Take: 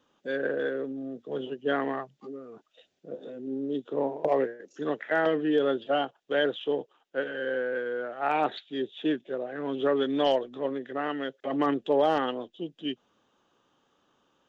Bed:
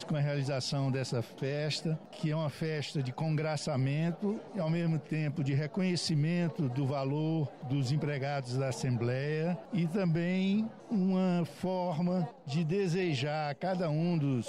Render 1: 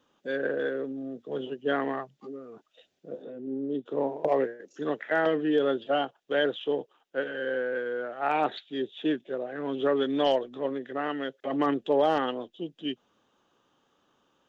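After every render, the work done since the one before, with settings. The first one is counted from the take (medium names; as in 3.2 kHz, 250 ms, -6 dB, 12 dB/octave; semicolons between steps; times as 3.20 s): 3.22–3.86 s: treble shelf 3 kHz -12 dB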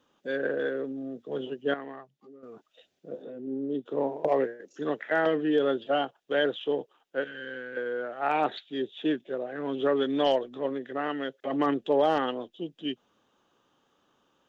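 1.74–2.43 s: gain -10.5 dB; 7.24–7.77 s: peaking EQ 590 Hz -13.5 dB 1.8 oct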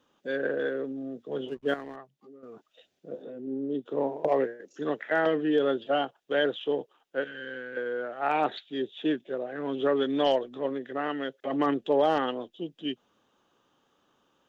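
1.48–1.96 s: hysteresis with a dead band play -46 dBFS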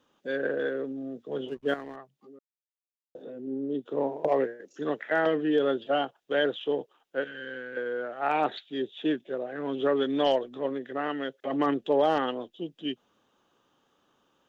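2.39–3.15 s: mute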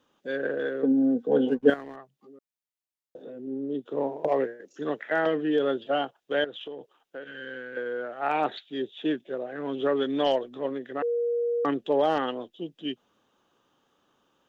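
0.83–1.70 s: small resonant body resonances 250/480/760/1500 Hz, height 16 dB, ringing for 35 ms; 6.44–7.29 s: compression, threshold -35 dBFS; 11.02–11.65 s: bleep 474 Hz -23.5 dBFS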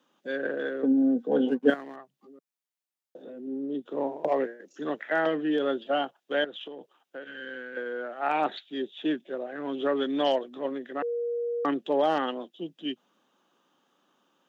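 steep high-pass 160 Hz 36 dB/octave; peaking EQ 450 Hz -4.5 dB 0.28 oct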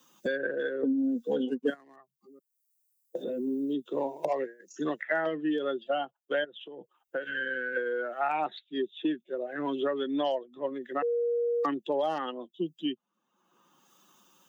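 expander on every frequency bin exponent 1.5; three bands compressed up and down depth 100%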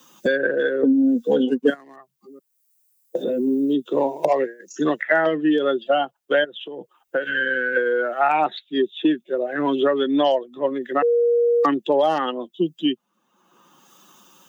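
trim +10.5 dB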